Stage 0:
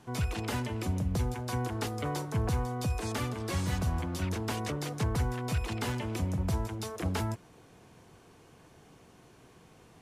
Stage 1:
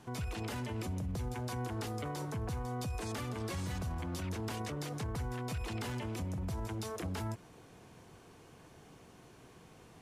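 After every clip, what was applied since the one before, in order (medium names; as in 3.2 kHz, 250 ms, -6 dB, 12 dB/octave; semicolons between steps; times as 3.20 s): peak limiter -31 dBFS, peak gain reduction 10 dB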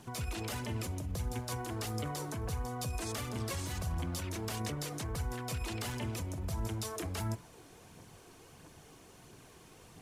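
phaser 1.5 Hz, delay 3.3 ms, feedback 38%; treble shelf 4.6 kHz +7.5 dB; de-hum 62.33 Hz, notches 39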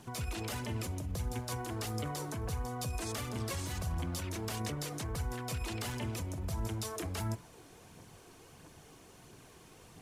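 no audible change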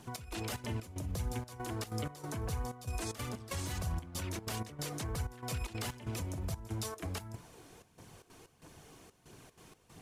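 trance gate "xx..xxx.xx..xxxx" 188 bpm -12 dB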